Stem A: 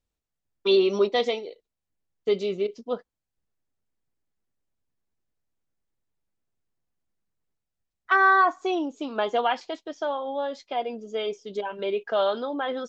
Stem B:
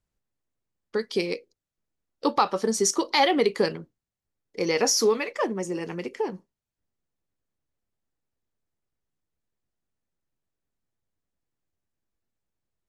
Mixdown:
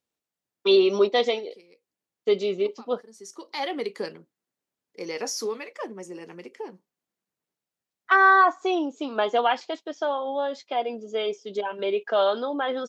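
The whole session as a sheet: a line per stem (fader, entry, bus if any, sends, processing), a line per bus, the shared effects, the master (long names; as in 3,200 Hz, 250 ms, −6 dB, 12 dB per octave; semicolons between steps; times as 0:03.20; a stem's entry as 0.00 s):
+2.0 dB, 0.00 s, no send, no processing
−8.0 dB, 0.40 s, no send, de-essing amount 35%; automatic ducking −19 dB, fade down 1.40 s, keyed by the first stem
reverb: not used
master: high-pass filter 200 Hz 12 dB per octave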